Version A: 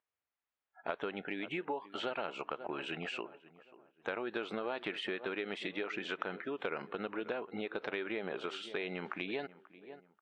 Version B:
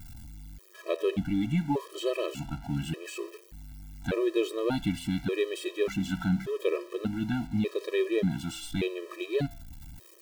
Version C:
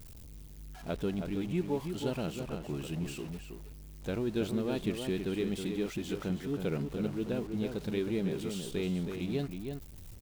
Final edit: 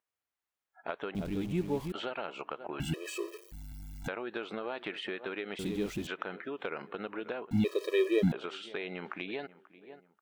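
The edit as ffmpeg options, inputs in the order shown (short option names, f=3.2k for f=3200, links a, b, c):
-filter_complex "[2:a]asplit=2[a][b];[1:a]asplit=2[c][d];[0:a]asplit=5[e][f][g][h][i];[e]atrim=end=1.152[j];[a]atrim=start=1.148:end=1.922[k];[f]atrim=start=1.918:end=2.802[l];[c]atrim=start=2.798:end=4.082[m];[g]atrim=start=4.078:end=5.592[n];[b]atrim=start=5.588:end=6.072[o];[h]atrim=start=6.068:end=7.512[p];[d]atrim=start=7.508:end=8.322[q];[i]atrim=start=8.318[r];[j][k]acrossfade=d=0.004:c1=hsin:c2=hsin[s];[s][l]acrossfade=d=0.004:c1=hsin:c2=hsin[t];[t][m]acrossfade=d=0.004:c1=hsin:c2=hsin[u];[u][n]acrossfade=d=0.004:c1=hsin:c2=hsin[v];[v][o]acrossfade=d=0.004:c1=hsin:c2=hsin[w];[w][p]acrossfade=d=0.004:c1=hsin:c2=hsin[x];[x][q]acrossfade=d=0.004:c1=hsin:c2=hsin[y];[y][r]acrossfade=d=0.004:c1=hsin:c2=hsin"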